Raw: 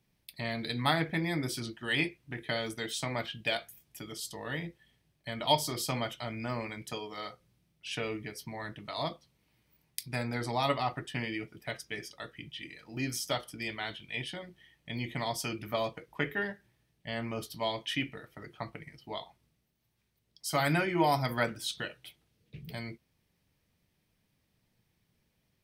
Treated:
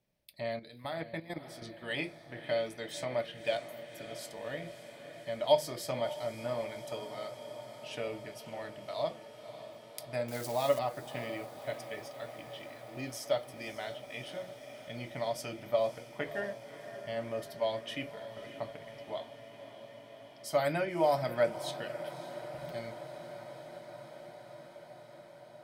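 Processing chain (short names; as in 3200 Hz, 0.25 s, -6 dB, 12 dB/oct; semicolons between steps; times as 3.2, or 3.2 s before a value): 10.28–10.79 switching spikes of -27.5 dBFS; bell 590 Hz +14.5 dB 0.43 oct; notches 50/100/150 Hz; 0.59–1.62 level quantiser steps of 15 dB; diffused feedback echo 0.571 s, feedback 79%, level -13 dB; gain -7 dB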